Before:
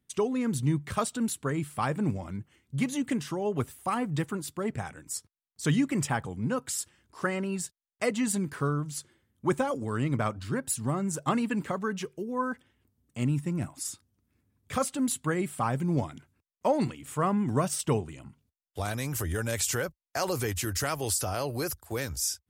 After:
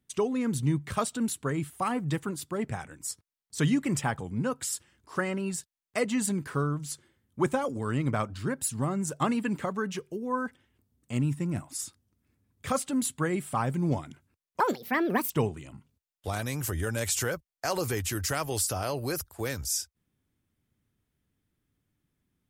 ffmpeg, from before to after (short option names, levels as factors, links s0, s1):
-filter_complex "[0:a]asplit=4[s0][s1][s2][s3];[s0]atrim=end=1.702[s4];[s1]atrim=start=3.758:end=16.664[s5];[s2]atrim=start=16.66:end=17.82,asetpts=PTS-STARTPTS,asetrate=72765,aresample=44100[s6];[s3]atrim=start=17.816[s7];[s4][s5]acrossfade=d=0.004:c1=hsin:c2=hsin[s8];[s8][s6]acrossfade=d=0.004:c1=hsin:c2=hsin[s9];[s9][s7]acrossfade=d=0.004:c1=hsin:c2=hsin"